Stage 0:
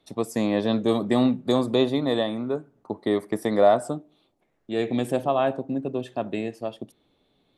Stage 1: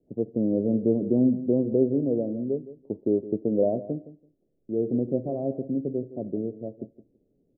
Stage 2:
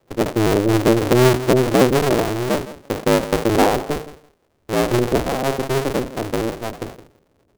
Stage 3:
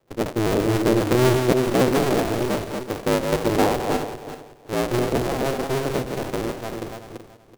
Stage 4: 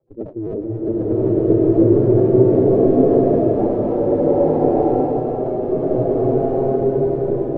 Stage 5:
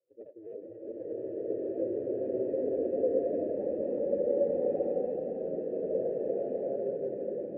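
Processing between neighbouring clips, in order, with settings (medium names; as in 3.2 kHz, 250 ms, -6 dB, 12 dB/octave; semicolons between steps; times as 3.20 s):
steep low-pass 530 Hz 36 dB/octave; feedback delay 166 ms, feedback 16%, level -15 dB
cycle switcher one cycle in 2, inverted; decay stretcher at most 140 dB/s; trim +7.5 dB
backward echo that repeats 189 ms, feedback 46%, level -5 dB; trim -5 dB
spectral contrast enhancement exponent 2.4; swelling reverb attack 1190 ms, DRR -10.5 dB; trim -4 dB
coarse spectral quantiser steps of 15 dB; ever faster or slower copies 381 ms, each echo -4 st, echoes 3; vowel filter e; trim -6.5 dB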